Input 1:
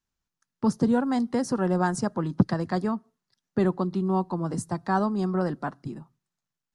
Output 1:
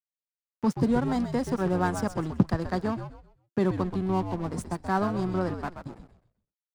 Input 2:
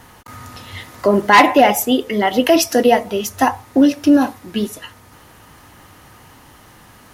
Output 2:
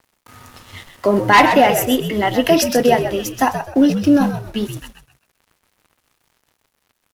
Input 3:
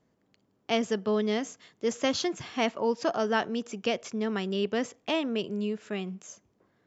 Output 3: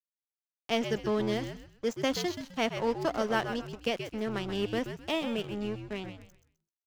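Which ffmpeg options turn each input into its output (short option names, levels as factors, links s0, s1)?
-filter_complex "[0:a]aeval=exprs='sgn(val(0))*max(abs(val(0))-0.0119,0)':c=same,asplit=5[s0][s1][s2][s3][s4];[s1]adelay=129,afreqshift=-86,volume=0.376[s5];[s2]adelay=258,afreqshift=-172,volume=0.112[s6];[s3]adelay=387,afreqshift=-258,volume=0.0339[s7];[s4]adelay=516,afreqshift=-344,volume=0.0101[s8];[s0][s5][s6][s7][s8]amix=inputs=5:normalize=0,volume=0.891"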